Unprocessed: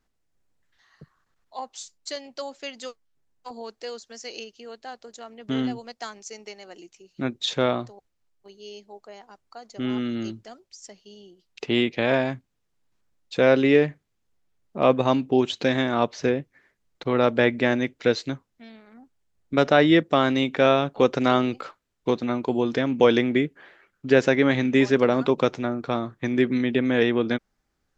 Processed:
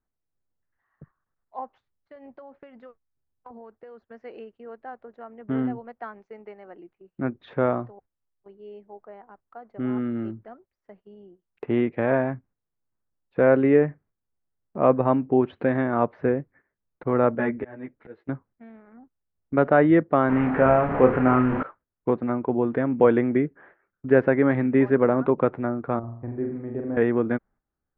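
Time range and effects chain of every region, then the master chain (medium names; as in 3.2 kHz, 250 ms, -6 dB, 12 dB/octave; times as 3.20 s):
1.77–4.06 s: peaking EQ 69 Hz +8 dB 1.4 oct + compression 12:1, threshold -39 dBFS
17.35–18.29 s: slow attack 475 ms + three-phase chorus
20.29–21.63 s: one-bit delta coder 16 kbps, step -20.5 dBFS + word length cut 6-bit, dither triangular + doubling 31 ms -5.5 dB
25.99–26.97 s: FFT filter 110 Hz 0 dB, 160 Hz -11 dB, 760 Hz -7 dB, 2 kHz -21 dB + flutter echo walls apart 7.3 m, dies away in 0.62 s
whole clip: low-pass 1.7 kHz 24 dB/octave; gate -52 dBFS, range -10 dB; peaking EQ 92 Hz +2.5 dB 0.98 oct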